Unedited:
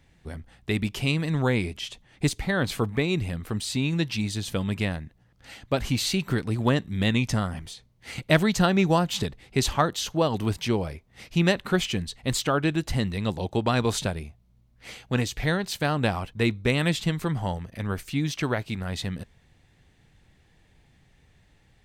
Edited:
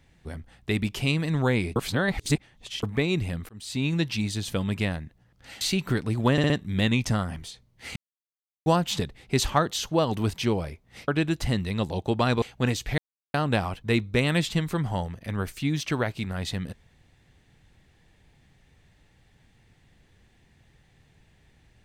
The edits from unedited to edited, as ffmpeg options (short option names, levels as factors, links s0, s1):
-filter_complex "[0:a]asplit=14[s0][s1][s2][s3][s4][s5][s6][s7][s8][s9][s10][s11][s12][s13];[s0]atrim=end=1.762[s14];[s1]atrim=start=1.758:end=2.832,asetpts=PTS-STARTPTS,areverse[s15];[s2]atrim=start=2.828:end=3.49,asetpts=PTS-STARTPTS,afade=t=out:st=0.658:d=0.004:c=hsin[s16];[s3]atrim=start=3.49:end=5.612,asetpts=PTS-STARTPTS,afade=t=in:d=0.37[s17];[s4]atrim=start=6.018:end=6.792[s18];[s5]atrim=start=6.728:end=6.792[s19];[s6]atrim=start=6.728:end=6.792[s20];[s7]atrim=start=6.728:end=8.19,asetpts=PTS-STARTPTS,afade=t=out:st=1.458:d=0.004:c=hsin[s21];[s8]atrim=start=8.19:end=8.89,asetpts=PTS-STARTPTS,volume=0[s22];[s9]atrim=start=8.89:end=11.312,asetpts=PTS-STARTPTS,afade=t=in:d=0.004:c=hsin[s23];[s10]atrim=start=12.548:end=13.892[s24];[s11]atrim=start=14.928:end=15.49,asetpts=PTS-STARTPTS,afade=t=out:st=0.558:d=0.004:c=hsin[s25];[s12]atrim=start=15.49:end=15.85,asetpts=PTS-STARTPTS,volume=0[s26];[s13]atrim=start=15.85,asetpts=PTS-STARTPTS,afade=t=in:d=0.004:c=hsin[s27];[s14][s15]acrossfade=d=0.004:c1=hsin:c2=hsin[s28];[s16][s17]concat=n=2:v=0:a=1[s29];[s28][s29]acrossfade=d=0.004:c1=hsin:c2=hsin[s30];[s30][s18]acrossfade=d=0.004:c1=hsin:c2=hsin[s31];[s31][s19]acrossfade=d=0.004:c1=hsin:c2=hsin[s32];[s32][s20]acrossfade=d=0.004:c1=hsin:c2=hsin[s33];[s21][s22][s23]concat=n=3:v=0:a=1[s34];[s33][s34]acrossfade=d=0.004:c1=hsin:c2=hsin[s35];[s35][s24]acrossfade=d=0.004:c1=hsin:c2=hsin[s36];[s25][s26][s27]concat=n=3:v=0:a=1[s37];[s36][s37]acrossfade=d=0.004:c1=hsin:c2=hsin"